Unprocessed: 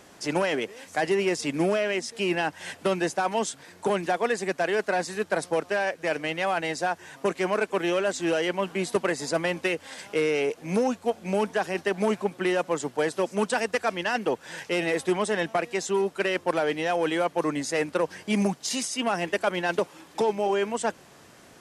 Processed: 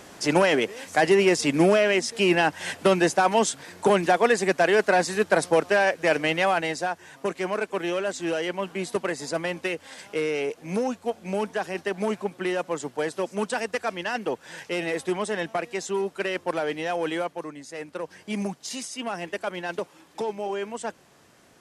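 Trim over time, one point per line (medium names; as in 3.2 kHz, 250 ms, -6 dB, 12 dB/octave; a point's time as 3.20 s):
6.36 s +5.5 dB
6.96 s -2 dB
17.18 s -2 dB
17.56 s -12.5 dB
18.27 s -5 dB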